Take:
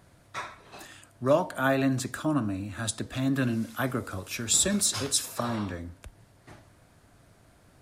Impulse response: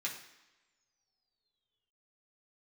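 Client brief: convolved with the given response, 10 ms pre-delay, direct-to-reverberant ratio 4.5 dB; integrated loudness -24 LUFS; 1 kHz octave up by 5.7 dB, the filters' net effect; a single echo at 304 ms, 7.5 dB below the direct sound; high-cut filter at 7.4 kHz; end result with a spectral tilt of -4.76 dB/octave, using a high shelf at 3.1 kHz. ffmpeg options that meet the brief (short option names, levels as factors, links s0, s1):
-filter_complex "[0:a]lowpass=7400,equalizer=f=1000:t=o:g=8,highshelf=f=3100:g=-5.5,aecho=1:1:304:0.422,asplit=2[s0][s1];[1:a]atrim=start_sample=2205,adelay=10[s2];[s1][s2]afir=irnorm=-1:irlink=0,volume=0.473[s3];[s0][s3]amix=inputs=2:normalize=0,volume=1.33"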